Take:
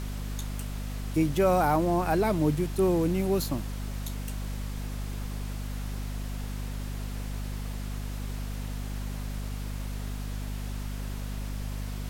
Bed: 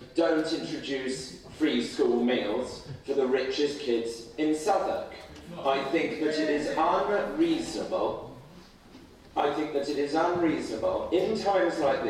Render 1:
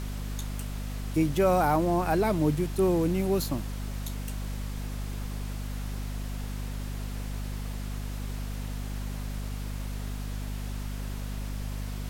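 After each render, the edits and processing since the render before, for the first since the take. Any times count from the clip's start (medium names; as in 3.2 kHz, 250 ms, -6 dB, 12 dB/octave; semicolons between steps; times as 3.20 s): no audible change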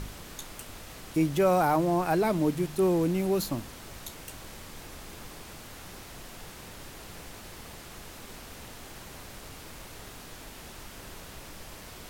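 de-hum 50 Hz, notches 5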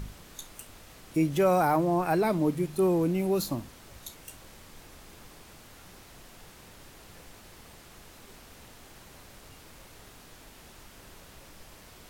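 noise print and reduce 6 dB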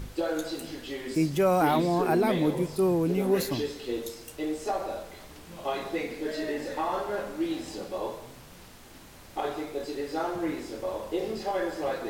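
add bed -5 dB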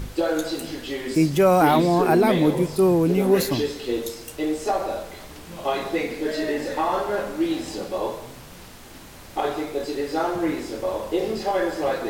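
trim +6.5 dB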